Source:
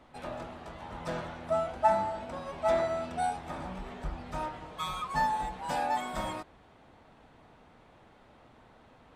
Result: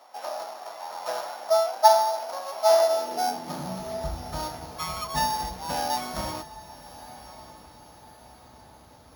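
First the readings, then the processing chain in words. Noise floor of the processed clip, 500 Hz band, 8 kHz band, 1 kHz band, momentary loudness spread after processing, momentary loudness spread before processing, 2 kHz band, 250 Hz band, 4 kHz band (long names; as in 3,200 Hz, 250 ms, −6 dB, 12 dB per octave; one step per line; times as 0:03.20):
−52 dBFS, +8.0 dB, +14.0 dB, +6.0 dB, 24 LU, 14 LU, +1.5 dB, +1.5 dB, +11.5 dB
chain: samples sorted by size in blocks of 8 samples
high-pass filter sweep 720 Hz → 63 Hz, 0:02.78–0:04.13
feedback delay with all-pass diffusion 1,175 ms, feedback 45%, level −16 dB
level +2.5 dB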